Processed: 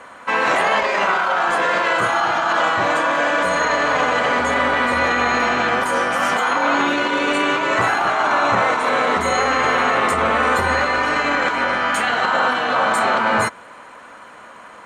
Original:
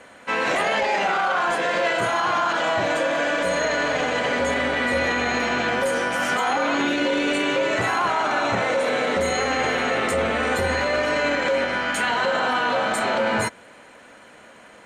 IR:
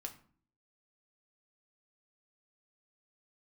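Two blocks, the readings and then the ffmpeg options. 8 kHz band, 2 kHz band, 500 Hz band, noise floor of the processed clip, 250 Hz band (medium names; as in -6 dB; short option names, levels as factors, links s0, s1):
+1.5 dB, +4.5 dB, +1.5 dB, -41 dBFS, +1.5 dB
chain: -af "equalizer=f=1100:t=o:w=0.82:g=12,afftfilt=real='re*lt(hypot(re,im),0.794)':imag='im*lt(hypot(re,im),0.794)':win_size=1024:overlap=0.75,volume=1.19"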